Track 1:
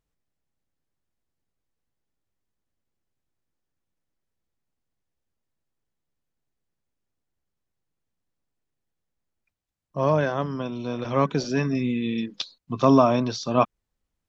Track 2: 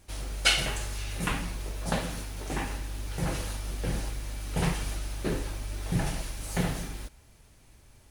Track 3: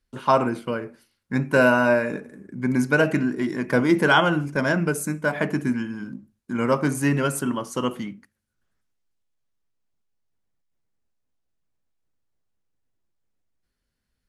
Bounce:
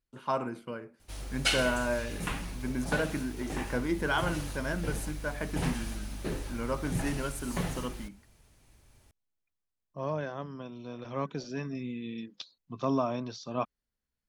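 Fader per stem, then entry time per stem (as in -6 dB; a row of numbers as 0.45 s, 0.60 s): -12.0 dB, -4.5 dB, -12.0 dB; 0.00 s, 1.00 s, 0.00 s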